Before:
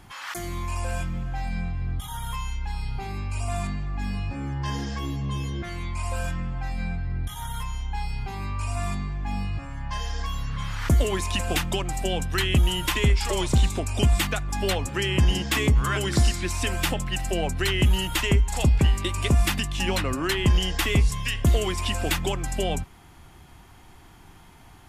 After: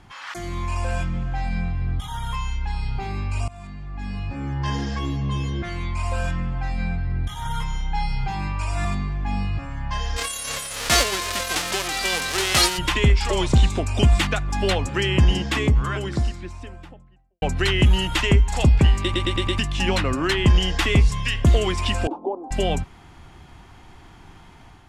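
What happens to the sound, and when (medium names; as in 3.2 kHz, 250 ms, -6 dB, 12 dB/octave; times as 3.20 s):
3.48–4.67 s: fade in, from -21 dB
7.45–8.85 s: comb 6.3 ms, depth 84%
10.16–12.77 s: formants flattened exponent 0.1
14.93–17.42 s: studio fade out
19.03 s: stutter in place 0.11 s, 5 plays
22.07–22.51 s: elliptic band-pass 260–900 Hz
whole clip: Bessel low-pass 5.8 kHz, order 2; level rider gain up to 4 dB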